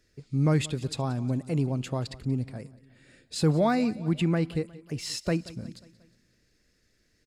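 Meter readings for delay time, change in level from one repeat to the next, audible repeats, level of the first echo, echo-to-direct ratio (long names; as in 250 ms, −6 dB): 180 ms, −5.5 dB, 3, −20.0 dB, −18.5 dB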